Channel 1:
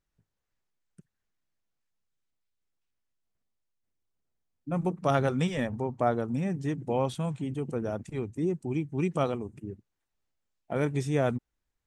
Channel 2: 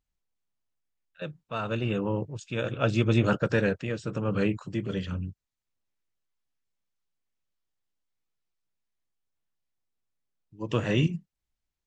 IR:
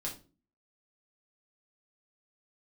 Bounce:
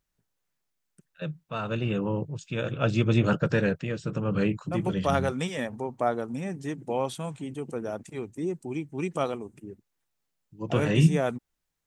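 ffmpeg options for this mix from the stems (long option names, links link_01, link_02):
-filter_complex "[0:a]highpass=frequency=270:poles=1,highshelf=frequency=7200:gain=6.5,volume=1dB[link_01];[1:a]equalizer=frequency=160:width=3.8:gain=8.5,volume=-0.5dB[link_02];[link_01][link_02]amix=inputs=2:normalize=0"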